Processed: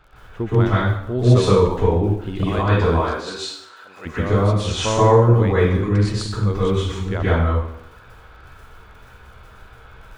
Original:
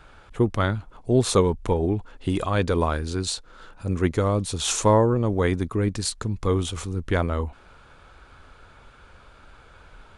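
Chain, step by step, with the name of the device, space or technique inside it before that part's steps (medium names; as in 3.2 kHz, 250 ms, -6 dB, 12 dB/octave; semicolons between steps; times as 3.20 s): lo-fi chain (low-pass 4.6 kHz 12 dB/octave; wow and flutter; crackle 24 per s -38 dBFS); 2.86–4.05 s: high-pass 300 Hz -> 930 Hz 12 dB/octave; peaking EQ 280 Hz -3 dB 0.31 oct; plate-style reverb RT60 0.72 s, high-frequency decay 0.85×, pre-delay 110 ms, DRR -9 dB; trim -4.5 dB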